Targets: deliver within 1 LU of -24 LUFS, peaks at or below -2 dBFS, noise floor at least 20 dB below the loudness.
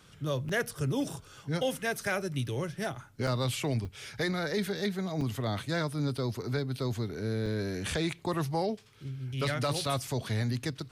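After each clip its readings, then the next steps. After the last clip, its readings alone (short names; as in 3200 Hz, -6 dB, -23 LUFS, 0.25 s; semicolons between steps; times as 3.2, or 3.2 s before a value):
dropouts 5; longest dropout 3.7 ms; loudness -32.5 LUFS; peak -20.5 dBFS; loudness target -24.0 LUFS
-> interpolate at 0.49/3.27/3.85/5.21/7.46, 3.7 ms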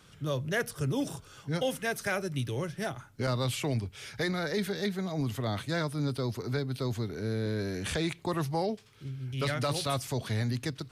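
dropouts 0; loudness -32.5 LUFS; peak -20.5 dBFS; loudness target -24.0 LUFS
-> gain +8.5 dB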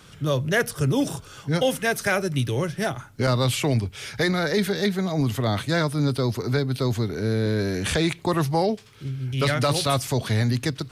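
loudness -24.0 LUFS; peak -12.0 dBFS; noise floor -47 dBFS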